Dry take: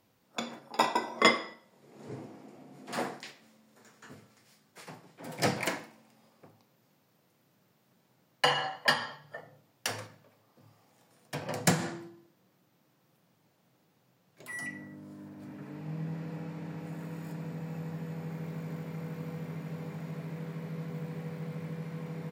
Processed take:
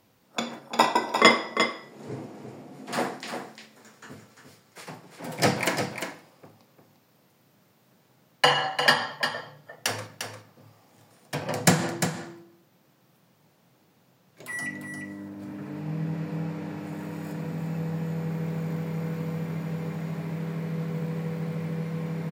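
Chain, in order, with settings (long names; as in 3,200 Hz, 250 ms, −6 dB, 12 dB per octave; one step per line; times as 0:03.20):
single-tap delay 350 ms −7.5 dB
level +6 dB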